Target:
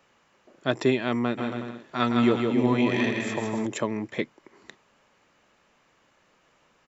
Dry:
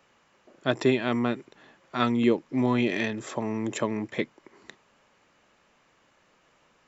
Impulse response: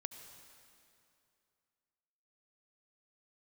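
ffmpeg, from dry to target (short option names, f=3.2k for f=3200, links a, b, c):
-filter_complex "[0:a]asplit=3[a][b][c];[a]afade=t=out:st=1.37:d=0.02[d];[b]aecho=1:1:160|280|370|437.5|488.1:0.631|0.398|0.251|0.158|0.1,afade=t=in:st=1.37:d=0.02,afade=t=out:st=3.65:d=0.02[e];[c]afade=t=in:st=3.65:d=0.02[f];[d][e][f]amix=inputs=3:normalize=0"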